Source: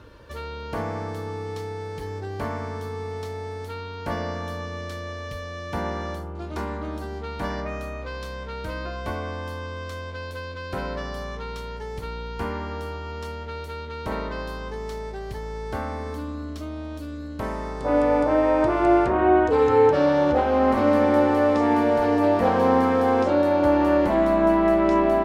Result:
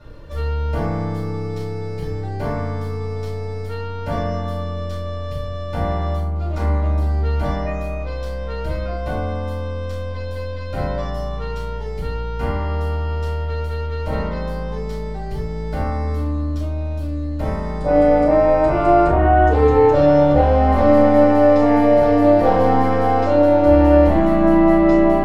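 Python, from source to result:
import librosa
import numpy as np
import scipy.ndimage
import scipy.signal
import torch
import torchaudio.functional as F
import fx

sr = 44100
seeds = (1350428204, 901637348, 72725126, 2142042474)

y = fx.low_shelf(x, sr, hz=240.0, db=5.5)
y = fx.room_shoebox(y, sr, seeds[0], volume_m3=230.0, walls='furnished', distance_m=6.8)
y = F.gain(torch.from_numpy(y), -9.0).numpy()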